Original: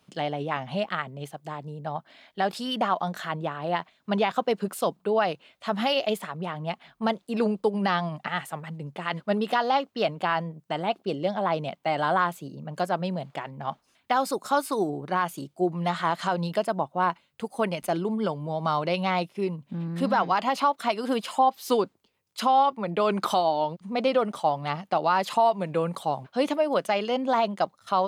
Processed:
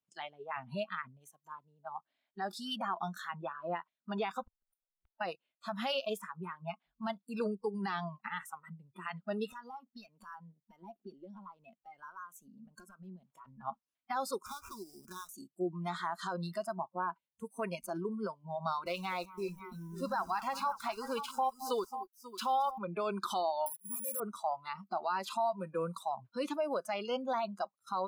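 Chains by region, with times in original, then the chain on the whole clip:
4.43–5.21 minimum comb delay 1.4 ms + compressor 5:1, threshold -37 dBFS + flipped gate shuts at -32 dBFS, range -39 dB
9.52–13.46 compressor, threshold -33 dBFS + hard clip -29 dBFS
14.46–15.29 compressor 10:1, threshold -30 dBFS + sample-rate reducer 4700 Hz, jitter 20%
18.86–22.78 bell 210 Hz -4 dB 1.6 oct + sample gate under -39.5 dBFS + tapped delay 0.219/0.539 s -15/-12.5 dB
23.66–24.2 de-esser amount 90% + low shelf 270 Hz -11.5 dB + careless resampling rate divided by 4×, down none, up zero stuff
whole clip: limiter -16.5 dBFS; spectral noise reduction 24 dB; dynamic EQ 230 Hz, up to -4 dB, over -42 dBFS, Q 2; gain -7 dB

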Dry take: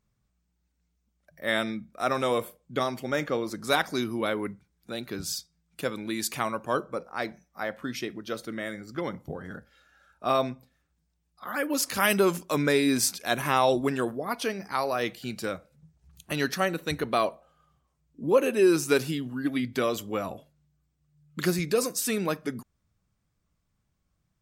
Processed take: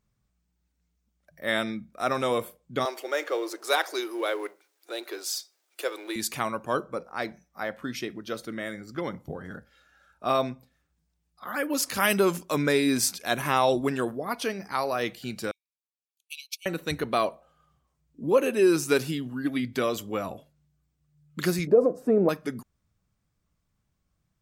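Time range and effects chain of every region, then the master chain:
2.85–6.16 G.711 law mismatch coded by mu + Chebyshev high-pass 340 Hz, order 5
15.51–16.66 de-esser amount 45% + brick-wall FIR high-pass 2200 Hz + upward expander 2.5:1, over -47 dBFS
21.67–22.29 EQ curve 100 Hz 0 dB, 600 Hz +14 dB, 3400 Hz -29 dB + compressor 2:1, threshold -17 dBFS
whole clip: dry

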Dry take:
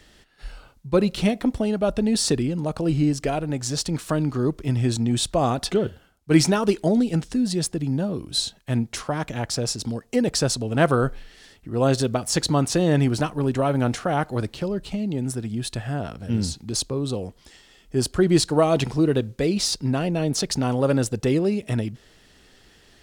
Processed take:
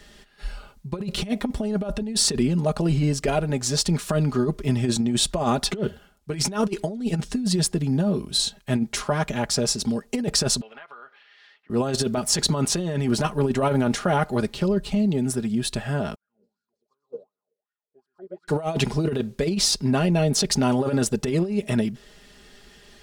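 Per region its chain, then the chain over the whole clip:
10.61–11.7 HPF 1300 Hz + compressor, threshold -41 dBFS + air absorption 320 m
16.15–18.48 feedback echo 0.124 s, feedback 41%, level -4 dB + wah 2.7 Hz 460–1500 Hz, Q 12 + upward expander 2.5:1, over -51 dBFS
whole clip: comb 4.9 ms, depth 63%; negative-ratio compressor -21 dBFS, ratio -0.5

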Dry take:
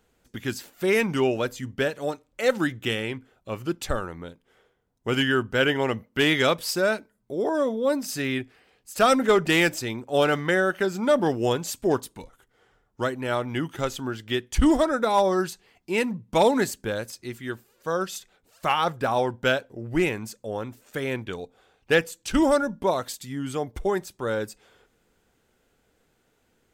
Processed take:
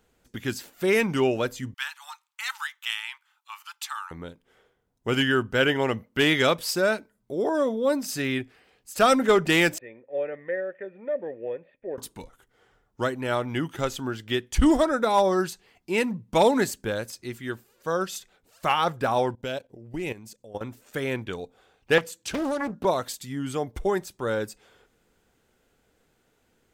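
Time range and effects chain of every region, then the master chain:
1.74–4.11 rippled Chebyshev high-pass 840 Hz, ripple 3 dB + high shelf 9600 Hz +5.5 dB
9.78–11.98 block floating point 5-bit + vocal tract filter e + bell 64 Hz -8.5 dB 1.5 oct
19.35–20.61 bell 1400 Hz -8 dB 0.83 oct + level quantiser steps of 15 dB
21.98–22.85 HPF 53 Hz 24 dB/oct + compressor 10:1, threshold -23 dBFS + Doppler distortion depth 0.96 ms
whole clip: dry

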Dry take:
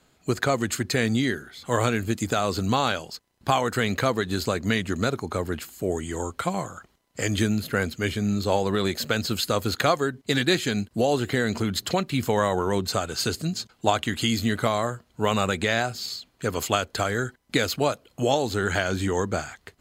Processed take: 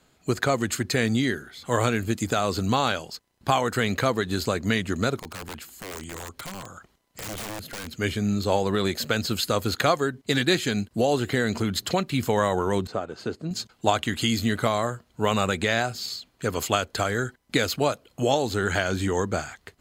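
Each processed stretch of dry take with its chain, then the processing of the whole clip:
5.19–7.93 compressor 1.5:1, threshold -43 dBFS + wrapped overs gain 29 dB
12.87–13.51 G.711 law mismatch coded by A + band-pass 420 Hz, Q 0.55
whole clip: dry

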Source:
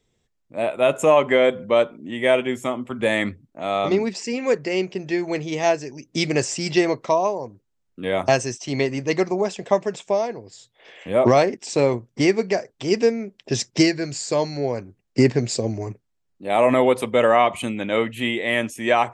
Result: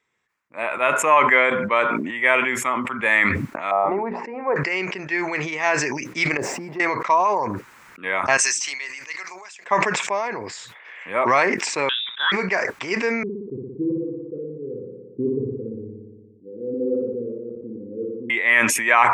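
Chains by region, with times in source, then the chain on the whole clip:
3.71–4.56 synth low-pass 770 Hz, resonance Q 3 + notches 60/120/180/240/300/360/420/480 Hz
6.37–6.8 zero-crossing step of -30 dBFS + EQ curve 100 Hz 0 dB, 230 Hz +9 dB, 760 Hz +5 dB, 1200 Hz -14 dB, 1800 Hz -12 dB, 2800 Hz -17 dB + compressor 2.5:1, threshold -27 dBFS
8.37–9.65 differentiator + notches 50/100/150/200/250/300/350 Hz
11.89–12.32 inverted band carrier 3700 Hz + dynamic EQ 2600 Hz, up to -5 dB, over -27 dBFS, Q 0.97
13.23–18.3 Chebyshev low-pass 510 Hz, order 10 + flutter echo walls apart 10 m, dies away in 1.1 s
whole clip: HPF 310 Hz 6 dB/oct; band shelf 1500 Hz +14 dB; sustainer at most 37 dB/s; gain -6 dB

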